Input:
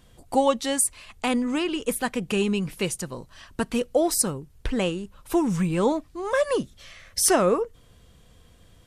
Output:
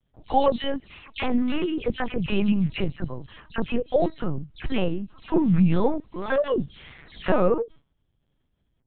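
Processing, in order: spectral delay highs early, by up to 0.171 s; gate with hold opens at -40 dBFS; bell 140 Hz +10 dB 1 oct; on a send: thin delay 74 ms, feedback 45%, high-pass 2300 Hz, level -22 dB; on the sum: LPC vocoder at 8 kHz pitch kept

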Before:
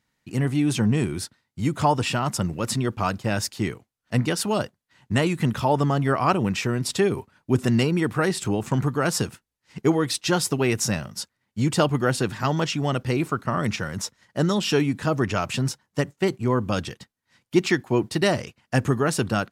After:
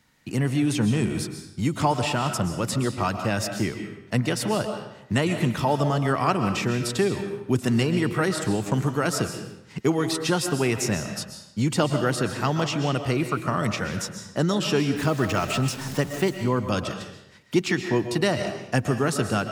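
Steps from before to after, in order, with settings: 14.96–16.3 zero-crossing step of -33 dBFS; digital reverb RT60 0.71 s, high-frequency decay 0.9×, pre-delay 90 ms, DRR 7.5 dB; three-band squash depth 40%; gain -1.5 dB

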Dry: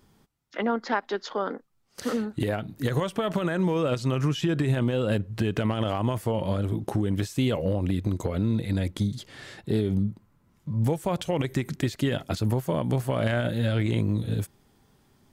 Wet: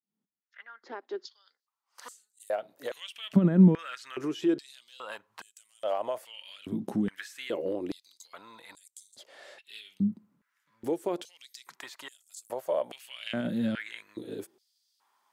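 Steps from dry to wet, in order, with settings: opening faded in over 2.54 s; 3.36–3.79 tilt -4 dB/oct; stepped high-pass 2.4 Hz 210–7700 Hz; gain -8.5 dB

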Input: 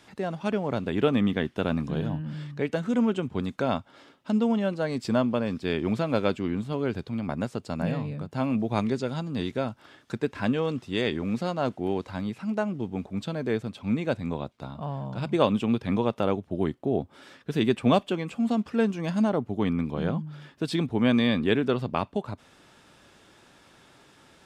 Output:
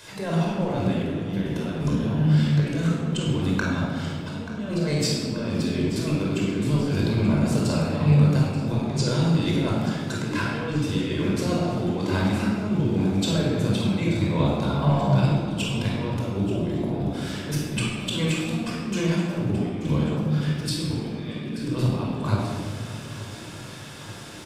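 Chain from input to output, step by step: high shelf 3900 Hz +10.5 dB; notches 60/120/180/240/300 Hz; negative-ratio compressor -32 dBFS, ratio -0.5; on a send: feedback echo 0.883 s, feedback 59%, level -15 dB; on the sum: shoebox room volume 2400 m³, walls mixed, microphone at 5.1 m; gain -1.5 dB

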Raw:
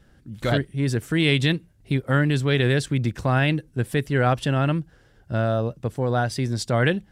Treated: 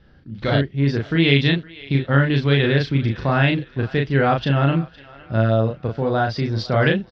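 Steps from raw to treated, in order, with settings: steep low-pass 5100 Hz 48 dB/oct; doubler 36 ms -3 dB; thinning echo 0.511 s, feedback 50%, high-pass 680 Hz, level -19 dB; gain +1.5 dB

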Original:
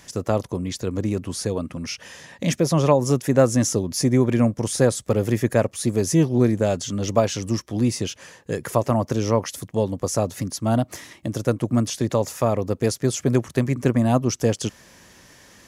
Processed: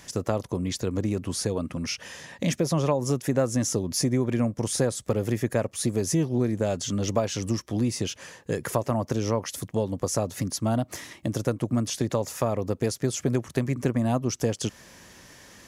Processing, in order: compressor 2.5:1, threshold -23 dBFS, peak gain reduction 8.5 dB

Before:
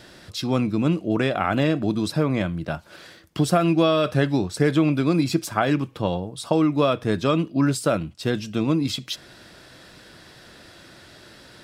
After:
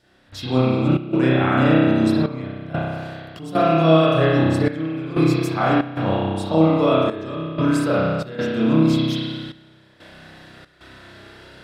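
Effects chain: spring tank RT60 1.8 s, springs 31 ms, chirp 30 ms, DRR -9.5 dB; step gate "..xxxx.xxxxxxx." 93 bpm -12 dB; gain -5.5 dB

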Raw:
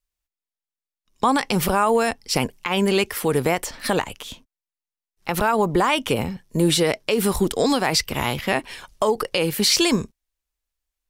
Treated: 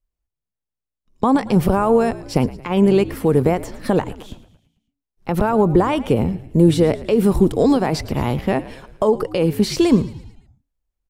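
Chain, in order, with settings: tilt shelf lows +9 dB; frequency-shifting echo 0.111 s, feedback 53%, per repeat -59 Hz, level -17 dB; gain -1 dB

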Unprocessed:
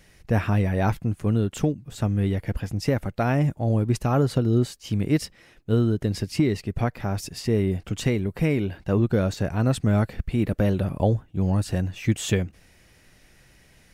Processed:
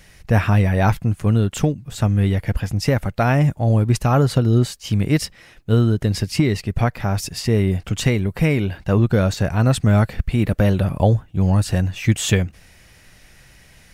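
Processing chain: bell 330 Hz -5.5 dB 1.5 oct; gain +7.5 dB

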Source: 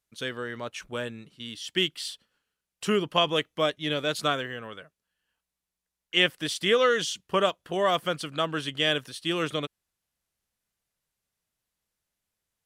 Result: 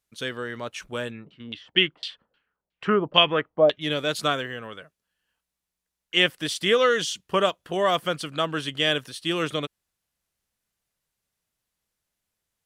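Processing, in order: 1.1–3.8 LFO low-pass saw down 5.4 Hz -> 1.5 Hz 550–3700 Hz; gain +2 dB

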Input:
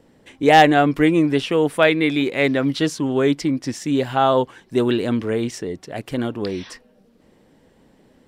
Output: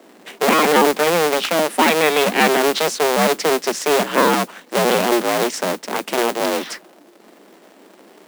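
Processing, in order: cycle switcher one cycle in 2, inverted; steep high-pass 180 Hz 72 dB/oct; in parallel at -3 dB: compressor, threshold -29 dBFS, peak gain reduction 21 dB; on the sum: limiter -7 dBFS, peak gain reduction 10.5 dB; modulation noise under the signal 17 dB; gain +4 dB

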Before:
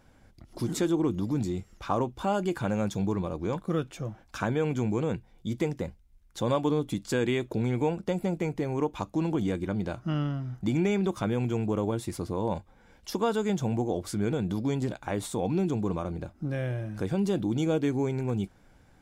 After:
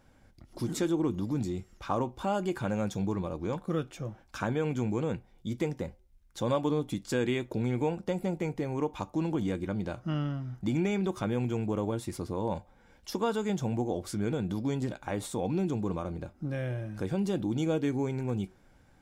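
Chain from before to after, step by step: on a send: weighting filter ITU-R 468 + reverb RT60 0.35 s, pre-delay 3 ms, DRR 13 dB; on the sum: gain -2.5 dB

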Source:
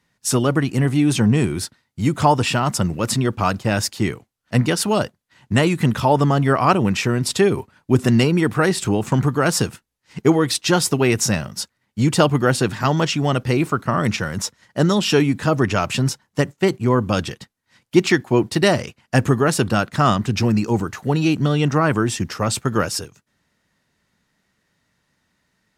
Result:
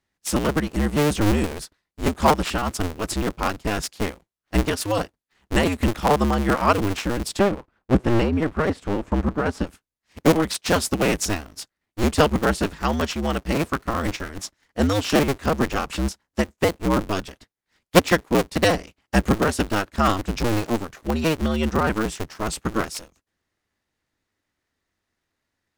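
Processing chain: cycle switcher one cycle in 2, inverted; 7.39–9.67 LPF 1600 Hz 6 dB/oct; upward expander 1.5:1, over -30 dBFS

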